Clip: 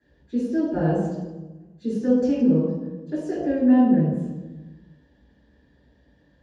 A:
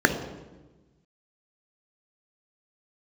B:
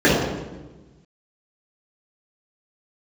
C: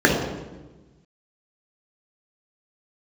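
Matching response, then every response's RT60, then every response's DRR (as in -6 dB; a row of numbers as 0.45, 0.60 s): B; 1.2, 1.2, 1.2 s; 6.0, -10.5, -2.0 dB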